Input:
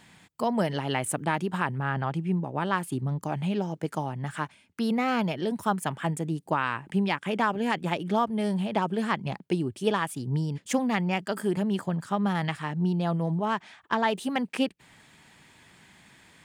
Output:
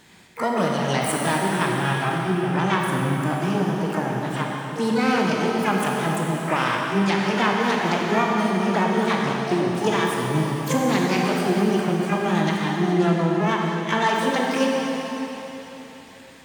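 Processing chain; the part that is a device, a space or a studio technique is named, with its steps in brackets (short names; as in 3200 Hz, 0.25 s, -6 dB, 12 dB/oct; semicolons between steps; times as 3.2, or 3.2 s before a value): shimmer-style reverb (harmoniser +12 st -6 dB; reverb RT60 4.0 s, pre-delay 19 ms, DRR -2 dB); gain +1.5 dB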